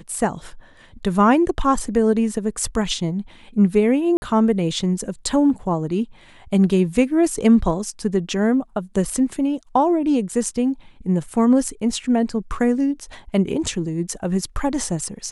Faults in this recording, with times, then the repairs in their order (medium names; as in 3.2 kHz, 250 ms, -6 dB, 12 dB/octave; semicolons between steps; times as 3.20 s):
4.17–4.22 s: dropout 50 ms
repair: interpolate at 4.17 s, 50 ms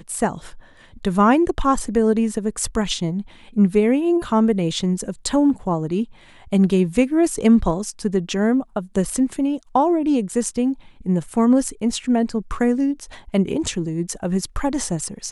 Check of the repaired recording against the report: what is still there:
nothing left